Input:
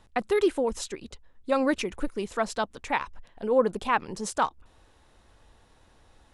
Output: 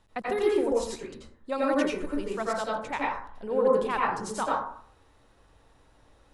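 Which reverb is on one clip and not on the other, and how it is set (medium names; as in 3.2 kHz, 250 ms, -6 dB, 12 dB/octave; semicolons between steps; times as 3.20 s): plate-style reverb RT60 0.57 s, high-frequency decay 0.4×, pre-delay 75 ms, DRR -4.5 dB; trim -6.5 dB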